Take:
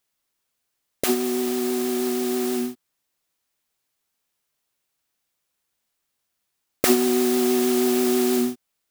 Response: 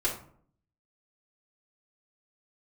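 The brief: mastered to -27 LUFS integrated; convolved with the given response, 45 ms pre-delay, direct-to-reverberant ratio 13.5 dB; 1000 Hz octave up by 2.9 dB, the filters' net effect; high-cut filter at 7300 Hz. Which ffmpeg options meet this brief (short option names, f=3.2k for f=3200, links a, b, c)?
-filter_complex "[0:a]lowpass=7.3k,equalizer=f=1k:t=o:g=4.5,asplit=2[a][b];[1:a]atrim=start_sample=2205,adelay=45[c];[b][c]afir=irnorm=-1:irlink=0,volume=-21dB[d];[a][d]amix=inputs=2:normalize=0,volume=-6dB"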